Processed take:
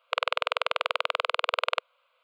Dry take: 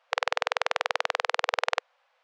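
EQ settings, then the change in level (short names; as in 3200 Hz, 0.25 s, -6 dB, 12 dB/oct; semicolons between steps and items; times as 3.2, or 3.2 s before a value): low shelf 370 Hz -5.5 dB; fixed phaser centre 1200 Hz, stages 8; +3.5 dB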